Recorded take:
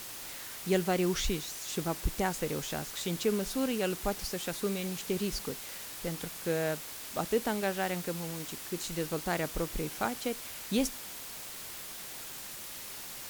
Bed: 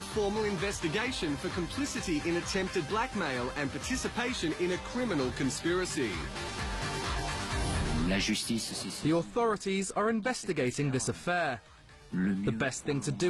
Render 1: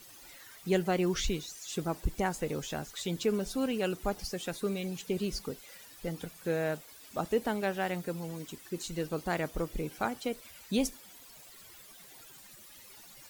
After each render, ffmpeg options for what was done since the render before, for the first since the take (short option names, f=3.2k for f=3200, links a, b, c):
-af "afftdn=nr=14:nf=-44"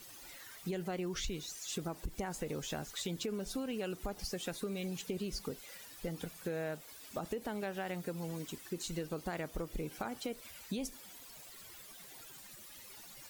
-af "alimiter=limit=-23.5dB:level=0:latency=1:release=63,acompressor=threshold=-35dB:ratio=6"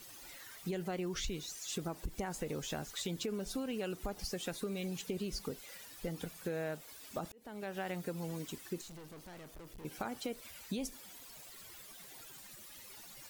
-filter_complex "[0:a]asettb=1/sr,asplit=3[a][b][c];[a]atrim=end=8.814[d];[b]atrim=start=8.81:end=9.85,asetpts=PTS-STARTPTS,afade=t=in:d=0.004:c=qsin,afade=t=out:st=1.036:d=0.004:c=qsin,aeval=exprs='(tanh(282*val(0)+0.4)-tanh(0.4))/282':c=same[e];[c]atrim=start=9.846[f];[d][e]acrossfade=d=0.004:c1=hsin:c2=qsin[g];[g][f]acrossfade=d=0.004:c1=qsin:c2=hsin,asplit=2[h][i];[h]atrim=end=7.32,asetpts=PTS-STARTPTS,afade=t=out:st=7.316:d=0.004:c=hsin[j];[i]atrim=start=7.32,asetpts=PTS-STARTPTS,afade=t=in:d=0.48[k];[j][k]concat=n=2:v=0:a=1"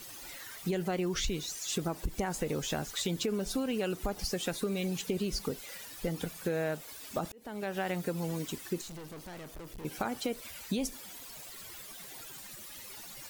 -af "volume=6dB"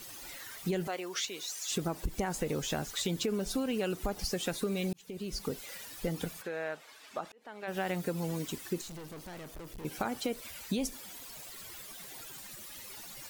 -filter_complex "[0:a]asettb=1/sr,asplit=3[a][b][c];[a]atrim=end=0.874[d];[b]atrim=start=0.87:end=1.71,asetpts=PTS-STARTPTS,afade=t=in:d=0.004:c=qsin,afade=t=out:st=0.836:d=0.004:c=qsin,highpass=530[e];[c]atrim=start=1.706[f];[d][e]acrossfade=d=0.004:c1=hsin:c2=qsin[g];[g][f]acrossfade=d=0.004:c1=qsin:c2=hsin,asplit=3[h][i][j];[h]afade=t=out:st=6.41:d=0.02[k];[i]bandpass=f=1.5k:t=q:w=0.58,afade=t=in:st=6.41:d=0.02,afade=t=out:st=7.67:d=0.02[l];[j]afade=t=in:st=7.67:d=0.02[m];[k][l][m]amix=inputs=3:normalize=0,asplit=2[n][o];[n]atrim=end=4.93,asetpts=PTS-STARTPTS,afade=t=out:st=4.926:d=0.004:c=hsin[p];[o]atrim=start=4.93,asetpts=PTS-STARTPTS,afade=t=in:d=0.61[q];[p][q]concat=n=2:v=0:a=1"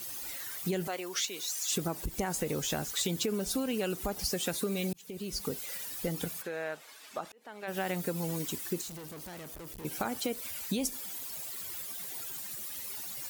-af "highpass=42,highshelf=f=7.5k:g=9.5"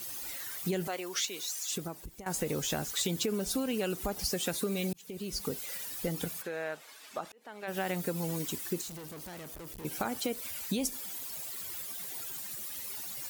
-filter_complex "[0:a]asplit=2[a][b];[a]atrim=end=2.26,asetpts=PTS-STARTPTS,afade=t=out:st=1.35:d=0.91:silence=0.149624[c];[b]atrim=start=2.26,asetpts=PTS-STARTPTS,afade=t=in:d=0.004:c=hsin:silence=0.149624[d];[c][d]concat=n=2:v=0:a=1"